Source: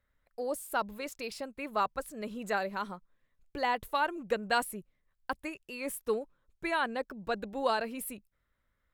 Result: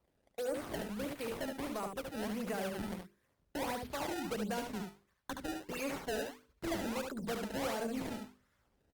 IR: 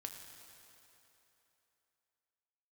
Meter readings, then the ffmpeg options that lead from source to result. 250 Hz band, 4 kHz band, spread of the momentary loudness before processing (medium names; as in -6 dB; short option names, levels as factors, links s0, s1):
+1.5 dB, -4.0 dB, 11 LU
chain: -filter_complex "[0:a]highpass=f=51:w=0.5412,highpass=f=51:w=1.3066,bandreject=f=50:t=h:w=6,bandreject=f=100:t=h:w=6,bandreject=f=150:t=h:w=6,bandreject=f=200:t=h:w=6,bandreject=f=250:t=h:w=6,bandreject=f=300:t=h:w=6,bandreject=f=350:t=h:w=6,bandreject=f=400:t=h:w=6,bandreject=f=450:t=h:w=6,acrossover=split=490[s0][s1];[s0]alimiter=level_in=3.35:limit=0.0631:level=0:latency=1:release=77,volume=0.299[s2];[s1]acompressor=threshold=0.00631:ratio=6[s3];[s2][s3]amix=inputs=2:normalize=0,acrusher=samples=23:mix=1:aa=0.000001:lfo=1:lforange=36.8:lforate=1.5,asoftclip=type=tanh:threshold=0.0133,aecho=1:1:72:0.562,volume=1.78" -ar 48000 -c:a libopus -b:a 32k